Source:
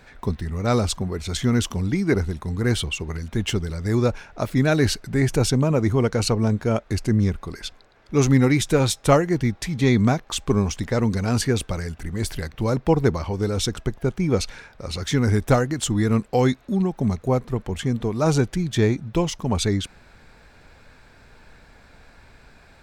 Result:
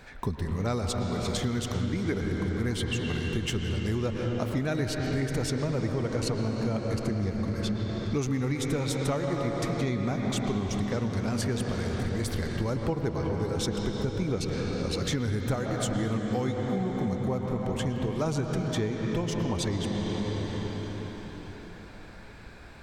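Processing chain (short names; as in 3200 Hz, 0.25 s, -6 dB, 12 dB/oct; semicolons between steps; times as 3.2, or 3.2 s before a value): on a send at -2 dB: reverb RT60 5.0 s, pre-delay 98 ms; on the sum: compressor 6:1, threshold -26 dBFS, peak gain reduction 15 dB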